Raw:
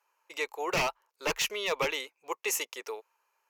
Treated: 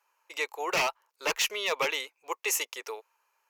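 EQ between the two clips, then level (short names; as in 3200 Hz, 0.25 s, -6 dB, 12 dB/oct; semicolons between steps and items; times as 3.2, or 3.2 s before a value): low shelf 130 Hz -5 dB; low shelf 270 Hz -10.5 dB; +2.5 dB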